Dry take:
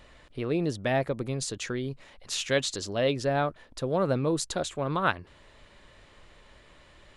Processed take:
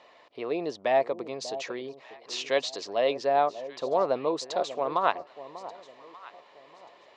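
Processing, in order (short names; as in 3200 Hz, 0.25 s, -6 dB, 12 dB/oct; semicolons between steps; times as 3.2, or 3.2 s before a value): speaker cabinet 410–5600 Hz, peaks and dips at 440 Hz +3 dB, 710 Hz +7 dB, 1000 Hz +6 dB, 1500 Hz -7 dB, 3300 Hz -3 dB; echo with dull and thin repeats by turns 0.592 s, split 920 Hz, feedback 51%, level -13 dB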